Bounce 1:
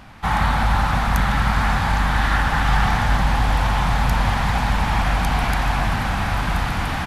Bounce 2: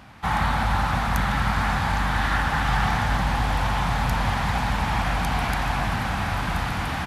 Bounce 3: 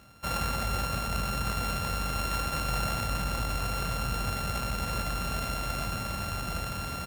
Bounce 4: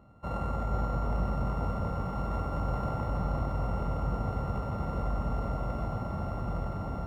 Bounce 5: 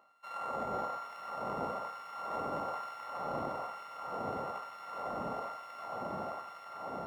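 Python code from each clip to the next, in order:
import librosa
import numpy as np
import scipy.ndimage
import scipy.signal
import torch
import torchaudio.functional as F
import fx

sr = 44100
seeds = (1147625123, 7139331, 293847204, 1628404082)

y1 = scipy.signal.sosfilt(scipy.signal.butter(2, 52.0, 'highpass', fs=sr, output='sos'), x)
y1 = F.gain(torch.from_numpy(y1), -3.0).numpy()
y2 = np.r_[np.sort(y1[:len(y1) // 32 * 32].reshape(-1, 32), axis=1).ravel(), y1[len(y1) // 32 * 32:]]
y2 = F.gain(torch.from_numpy(y2), -8.0).numpy()
y3 = scipy.signal.savgol_filter(y2, 65, 4, mode='constant')
y3 = fx.echo_multitap(y3, sr, ms=(93, 256, 310, 482, 808), db=(-10.5, -10.5, -19.0, -5.0, -8.0))
y4 = fx.filter_lfo_highpass(y3, sr, shape='sine', hz=1.1, low_hz=300.0, high_hz=1800.0, q=0.77)
y4 = F.gain(torch.from_numpy(y4), 1.0).numpy()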